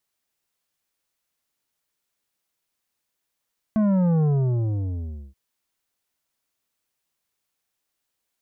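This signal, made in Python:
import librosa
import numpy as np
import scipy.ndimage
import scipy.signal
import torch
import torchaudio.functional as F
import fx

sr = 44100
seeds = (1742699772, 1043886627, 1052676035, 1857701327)

y = fx.sub_drop(sr, level_db=-18.0, start_hz=220.0, length_s=1.58, drive_db=9.5, fade_s=1.11, end_hz=65.0)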